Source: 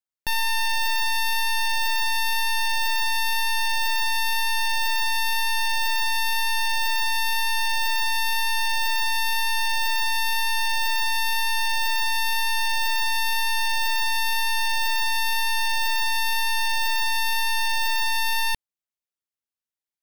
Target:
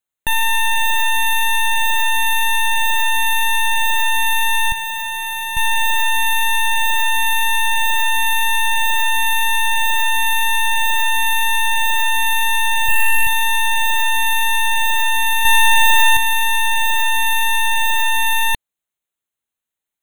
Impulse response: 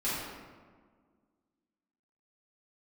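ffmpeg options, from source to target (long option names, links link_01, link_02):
-filter_complex "[0:a]asettb=1/sr,asplit=3[link_01][link_02][link_03];[link_01]atrim=end=4.724[link_04];[link_02]atrim=start=4.72:end=5.57,asetpts=PTS-STARTPTS,afade=type=in:duration=0.004:curve=qsin,afade=type=out:start_time=0.846:duration=0.004:curve=qsin,aeval=exprs='max(val(0),0)':channel_layout=same[link_05];[link_03]atrim=start=5.566[link_06];[link_04][link_05]acrossfade=duration=0.004:curve1=hsin:curve2=qsin[link_07];[link_07][link_06]acrossfade=duration=0.004:curve1=qsin:curve2=hsin,asettb=1/sr,asplit=3[link_08][link_09][link_10];[link_08]atrim=end=12.844[link_11];[link_09]atrim=start=12.84:end=13.27,asetpts=PTS-STARTPTS,afade=type=in:duration=0.004:curve=qsin,afade=type=out:start_time=0.426:duration=0.004:curve=qsin,asplit=2[link_12][link_13];[link_13]adelay=44,volume=-2dB[link_14];[link_12][link_14]amix=inputs=2:normalize=0,atrim=end_sample=18963[link_15];[link_10]atrim=start=13.266[link_16];[link_11][link_15]acrossfade=duration=0.004:curve1=hsin:curve2=qsin[link_17];[link_17][link_16]acrossfade=duration=0.004:curve1=qsin:curve2=hsin,asettb=1/sr,asplit=3[link_18][link_19][link_20];[link_18]atrim=end=15.454[link_21];[link_19]atrim=start=15.45:end=16.17,asetpts=PTS-STARTPTS,afade=type=in:duration=0.004:curve=qsin,afade=type=out:start_time=0.716:duration=0.004:curve=qsin,acontrast=28[link_22];[link_20]atrim=start=16.166[link_23];[link_21][link_22]acrossfade=duration=0.004:curve1=hsin:curve2=qsin[link_24];[link_24][link_23]acrossfade=duration=0.004:curve1=qsin:curve2=hsin,asuperstop=centerf=5100:order=20:qfactor=2.8,volume=7.5dB"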